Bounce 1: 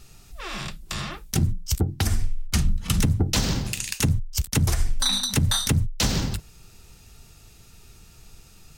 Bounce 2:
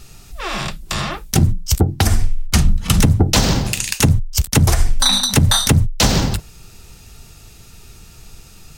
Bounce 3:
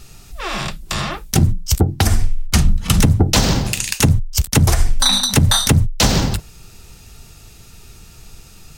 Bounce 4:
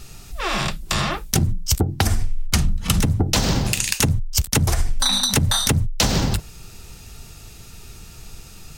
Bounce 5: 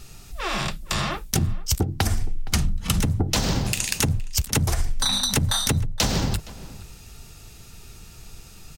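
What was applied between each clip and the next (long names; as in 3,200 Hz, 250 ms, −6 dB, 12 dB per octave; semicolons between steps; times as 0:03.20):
dynamic equaliser 710 Hz, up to +5 dB, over −44 dBFS, Q 0.97; level +8 dB
no processing that can be heard
downward compressor, threshold −16 dBFS, peak gain reduction 9 dB; level +1 dB
slap from a distant wall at 80 metres, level −18 dB; level −3.5 dB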